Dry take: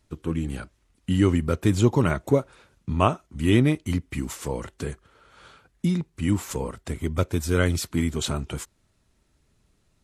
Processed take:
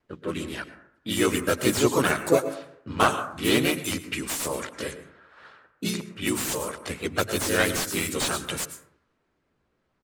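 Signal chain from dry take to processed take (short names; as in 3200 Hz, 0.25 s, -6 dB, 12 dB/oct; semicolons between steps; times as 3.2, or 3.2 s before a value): RIAA curve recording; low-pass opened by the level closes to 1200 Hz, open at -24.5 dBFS; harmonic-percussive split percussive +4 dB; plate-style reverb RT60 0.7 s, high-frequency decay 0.3×, pre-delay 95 ms, DRR 12.5 dB; vibrato 0.44 Hz 12 cents; bell 730 Hz -6.5 dB 0.25 oct; notches 50/100/150/200/250 Hz; harmoniser -7 st -16 dB, +3 st -1 dB; slew limiter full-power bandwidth 330 Hz; gain -1.5 dB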